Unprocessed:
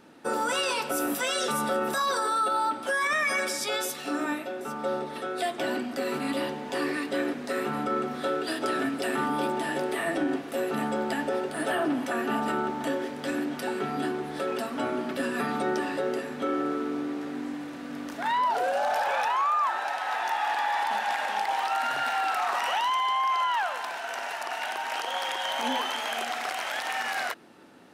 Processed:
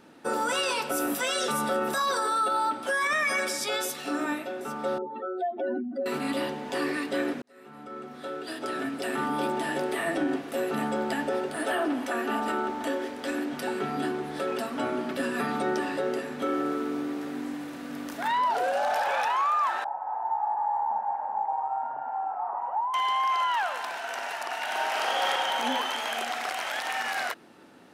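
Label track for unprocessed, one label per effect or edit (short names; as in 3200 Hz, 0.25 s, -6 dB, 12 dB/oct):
4.980000	6.060000	spectral contrast raised exponent 2.5
7.420000	9.530000	fade in
11.560000	13.530000	bell 150 Hz -13.5 dB 0.55 oct
16.390000	18.280000	high shelf 11000 Hz +11 dB
19.840000	22.940000	ladder low-pass 970 Hz, resonance 70%
24.640000	25.300000	reverb throw, RT60 2.4 s, DRR -3 dB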